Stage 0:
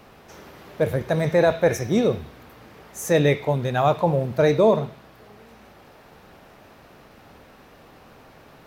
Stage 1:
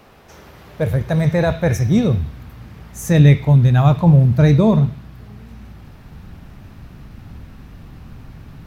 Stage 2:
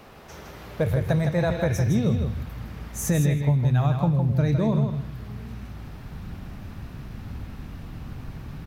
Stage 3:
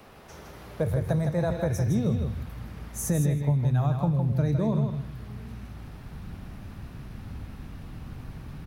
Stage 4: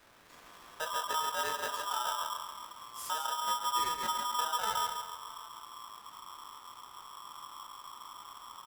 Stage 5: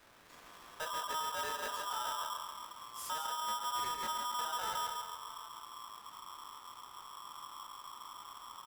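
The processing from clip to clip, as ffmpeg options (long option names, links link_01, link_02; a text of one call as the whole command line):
ffmpeg -i in.wav -af "asubboost=boost=12:cutoff=150,volume=1.5dB" out.wav
ffmpeg -i in.wav -filter_complex "[0:a]acompressor=threshold=-20dB:ratio=6,asplit=2[link_01][link_02];[link_02]aecho=0:1:160|320|480:0.473|0.071|0.0106[link_03];[link_01][link_03]amix=inputs=2:normalize=0" out.wav
ffmpeg -i in.wav -filter_complex "[0:a]acrossover=split=160|1600|4100[link_01][link_02][link_03][link_04];[link_03]acompressor=threshold=-53dB:ratio=6[link_05];[link_04]aexciter=amount=1.7:drive=1.5:freq=9500[link_06];[link_01][link_02][link_05][link_06]amix=inputs=4:normalize=0,volume=-3dB" out.wav
ffmpeg -i in.wav -filter_complex "[0:a]flanger=delay=19:depth=5:speed=1.7,asplit=2[link_01][link_02];[link_02]adelay=138,lowpass=frequency=2000:poles=1,volume=-9dB,asplit=2[link_03][link_04];[link_04]adelay=138,lowpass=frequency=2000:poles=1,volume=0.54,asplit=2[link_05][link_06];[link_06]adelay=138,lowpass=frequency=2000:poles=1,volume=0.54,asplit=2[link_07][link_08];[link_08]adelay=138,lowpass=frequency=2000:poles=1,volume=0.54,asplit=2[link_09][link_10];[link_10]adelay=138,lowpass=frequency=2000:poles=1,volume=0.54,asplit=2[link_11][link_12];[link_12]adelay=138,lowpass=frequency=2000:poles=1,volume=0.54[link_13];[link_01][link_03][link_05][link_07][link_09][link_11][link_13]amix=inputs=7:normalize=0,aeval=exprs='val(0)*sgn(sin(2*PI*1100*n/s))':channel_layout=same,volume=-7.5dB" out.wav
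ffmpeg -i in.wav -af "asoftclip=type=tanh:threshold=-32dB,volume=-1dB" out.wav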